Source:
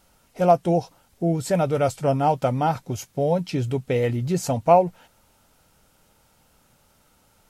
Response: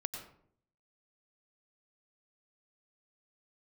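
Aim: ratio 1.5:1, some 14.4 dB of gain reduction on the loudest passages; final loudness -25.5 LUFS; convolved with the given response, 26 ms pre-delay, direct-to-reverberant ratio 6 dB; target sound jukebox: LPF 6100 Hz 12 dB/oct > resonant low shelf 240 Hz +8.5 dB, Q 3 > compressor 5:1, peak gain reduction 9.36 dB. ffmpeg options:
-filter_complex "[0:a]acompressor=threshold=-52dB:ratio=1.5,asplit=2[a][b];[1:a]atrim=start_sample=2205,adelay=26[c];[b][c]afir=irnorm=-1:irlink=0,volume=-6dB[d];[a][d]amix=inputs=2:normalize=0,lowpass=6.1k,lowshelf=f=240:t=q:w=3:g=8.5,acompressor=threshold=-28dB:ratio=5,volume=7dB"

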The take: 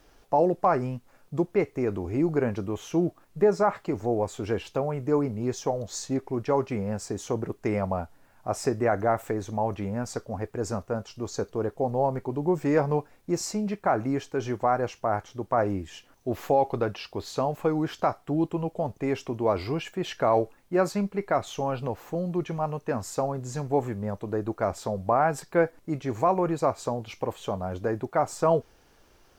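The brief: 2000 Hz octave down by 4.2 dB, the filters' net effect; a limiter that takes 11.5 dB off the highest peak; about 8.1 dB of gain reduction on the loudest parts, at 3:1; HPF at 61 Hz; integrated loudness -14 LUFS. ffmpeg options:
-af "highpass=61,equalizer=f=2k:t=o:g=-6,acompressor=threshold=-28dB:ratio=3,volume=23.5dB,alimiter=limit=-3dB:level=0:latency=1"

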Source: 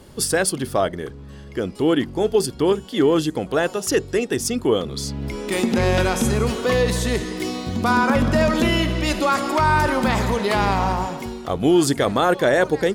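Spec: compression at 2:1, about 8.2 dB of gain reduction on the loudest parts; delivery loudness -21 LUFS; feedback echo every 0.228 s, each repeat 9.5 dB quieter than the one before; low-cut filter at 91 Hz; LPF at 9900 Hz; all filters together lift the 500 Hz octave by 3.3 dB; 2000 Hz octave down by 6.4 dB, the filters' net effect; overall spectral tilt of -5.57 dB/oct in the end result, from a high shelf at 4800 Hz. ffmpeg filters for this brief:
-af "highpass=91,lowpass=9.9k,equalizer=f=500:t=o:g=4.5,equalizer=f=2k:t=o:g=-8.5,highshelf=f=4.8k:g=-6,acompressor=threshold=-25dB:ratio=2,aecho=1:1:228|456|684|912:0.335|0.111|0.0365|0.012,volume=4dB"

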